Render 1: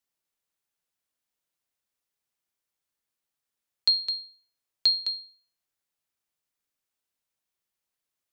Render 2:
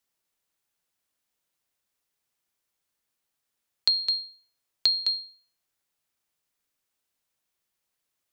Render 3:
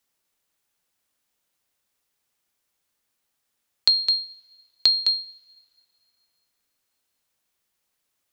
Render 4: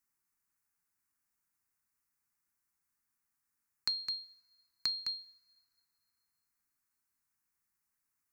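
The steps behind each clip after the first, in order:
downward compressor, threshold −24 dBFS, peak gain reduction 6.5 dB; level +4.5 dB
coupled-rooms reverb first 0.23 s, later 2.7 s, from −21 dB, DRR 16.5 dB; level +4.5 dB
phaser with its sweep stopped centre 1,400 Hz, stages 4; level −6 dB

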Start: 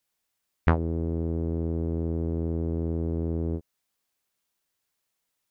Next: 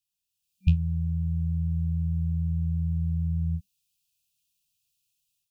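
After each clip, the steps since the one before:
brick-wall band-stop 190–2,400 Hz
automatic gain control gain up to 9.5 dB
level −6 dB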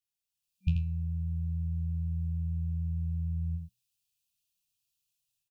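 tuned comb filter 120 Hz, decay 0.44 s, harmonics all, mix 60%
single-tap delay 83 ms −6 dB

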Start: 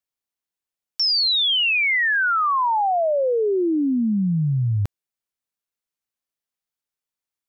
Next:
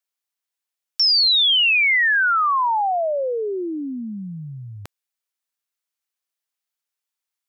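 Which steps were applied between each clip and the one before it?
high-pass filter 940 Hz 6 dB per octave
level +3.5 dB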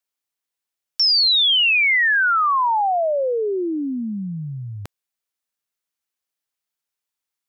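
low-shelf EQ 500 Hz +4.5 dB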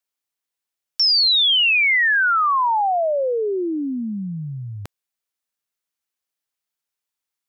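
no processing that can be heard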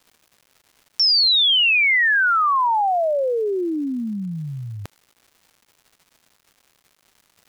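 surface crackle 370 per second −43 dBFS

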